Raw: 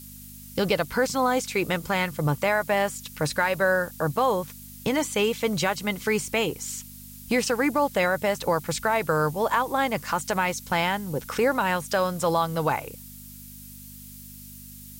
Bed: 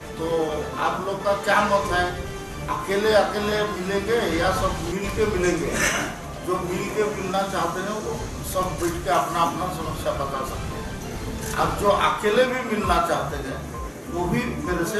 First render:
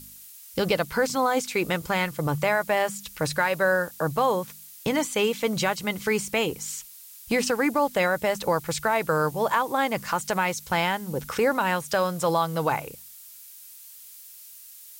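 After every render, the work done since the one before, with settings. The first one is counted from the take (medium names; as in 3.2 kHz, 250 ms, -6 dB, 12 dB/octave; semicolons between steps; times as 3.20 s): de-hum 50 Hz, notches 5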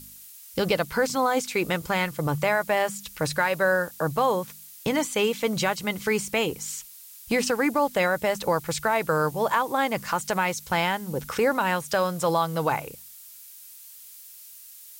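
no audible change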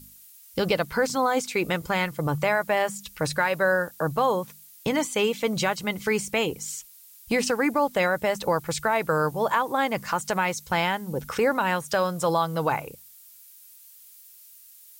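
noise reduction 6 dB, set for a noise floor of -46 dBFS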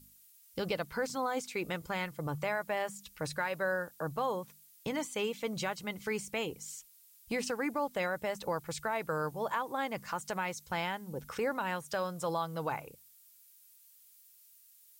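trim -10.5 dB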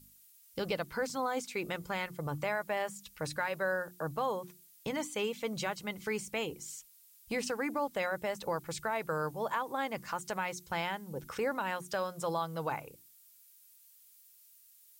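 hum notches 60/120/180/240/300/360 Hz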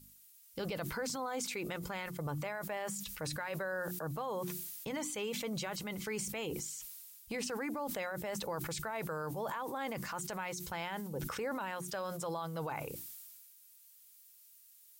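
peak limiter -30 dBFS, peak gain reduction 9 dB; decay stretcher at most 27 dB/s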